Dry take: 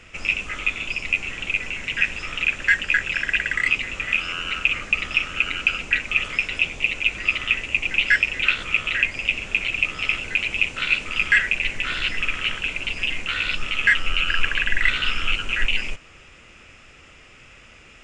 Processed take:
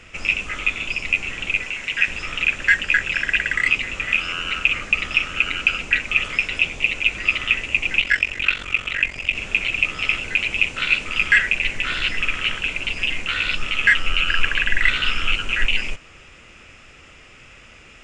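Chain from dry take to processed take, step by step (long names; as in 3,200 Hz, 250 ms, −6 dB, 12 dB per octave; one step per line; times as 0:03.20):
0:01.63–0:02.08: low-shelf EQ 320 Hz −9 dB
0:08.00–0:09.35: ring modulation 23 Hz
level +2 dB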